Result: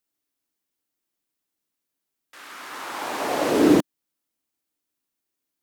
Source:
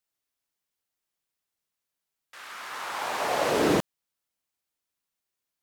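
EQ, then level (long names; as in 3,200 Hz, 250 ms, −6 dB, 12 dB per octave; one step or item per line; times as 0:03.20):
parametric band 290 Hz +11.5 dB 0.85 octaves
high-shelf EQ 9,200 Hz +4.5 dB
0.0 dB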